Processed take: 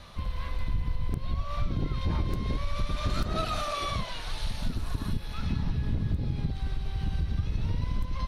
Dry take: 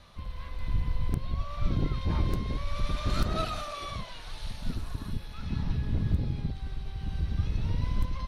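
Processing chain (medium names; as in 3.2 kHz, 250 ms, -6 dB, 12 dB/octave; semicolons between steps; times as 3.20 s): compression 5:1, threshold -31 dBFS, peak gain reduction 11 dB; trim +6.5 dB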